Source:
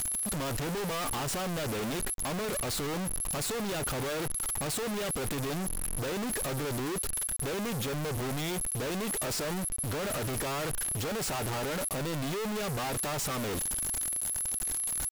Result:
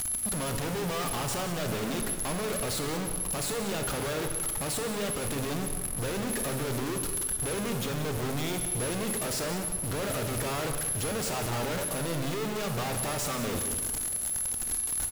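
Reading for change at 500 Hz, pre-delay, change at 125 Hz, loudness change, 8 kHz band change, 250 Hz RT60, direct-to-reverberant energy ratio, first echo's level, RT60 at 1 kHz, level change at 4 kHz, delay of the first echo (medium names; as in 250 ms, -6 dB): +1.5 dB, 25 ms, +2.0 dB, +1.5 dB, +1.5 dB, 1.8 s, 5.0 dB, -12.0 dB, 1.3 s, +1.0 dB, 180 ms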